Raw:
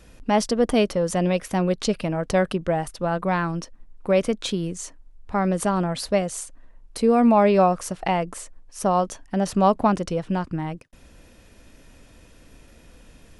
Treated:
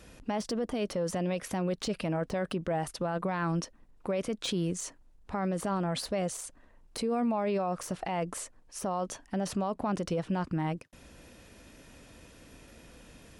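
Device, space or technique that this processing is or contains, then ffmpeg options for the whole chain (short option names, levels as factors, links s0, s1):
podcast mastering chain: -af "highpass=f=77:p=1,deesser=0.65,acompressor=threshold=0.0708:ratio=3,alimiter=limit=0.0708:level=0:latency=1:release=22" -ar 48000 -c:a libmp3lame -b:a 96k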